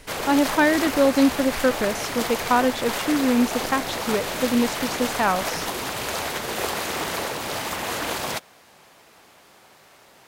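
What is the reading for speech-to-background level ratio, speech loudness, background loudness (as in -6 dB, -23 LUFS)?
5.0 dB, -22.5 LUFS, -27.5 LUFS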